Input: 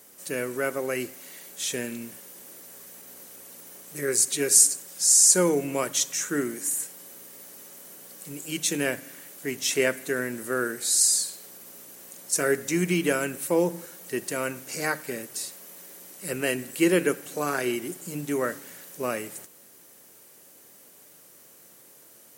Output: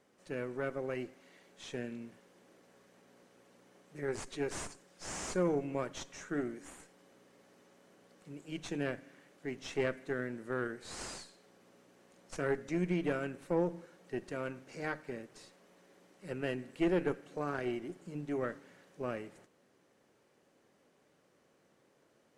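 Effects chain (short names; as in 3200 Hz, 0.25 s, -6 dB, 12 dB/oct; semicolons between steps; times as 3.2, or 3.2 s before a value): tube stage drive 17 dB, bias 0.6; tape spacing loss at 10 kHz 25 dB; gain -4.5 dB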